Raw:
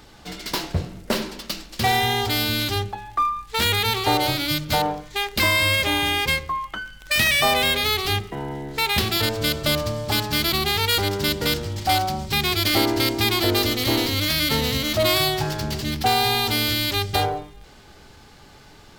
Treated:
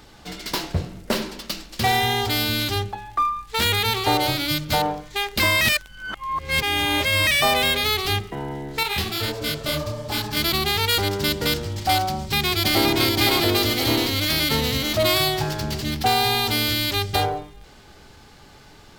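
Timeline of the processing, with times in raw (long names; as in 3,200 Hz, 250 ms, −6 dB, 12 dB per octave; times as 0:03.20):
0:05.61–0:07.27: reverse
0:08.83–0:10.37: micro pitch shift up and down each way 48 cents
0:12.12–0:12.88: delay throw 520 ms, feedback 55%, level −3 dB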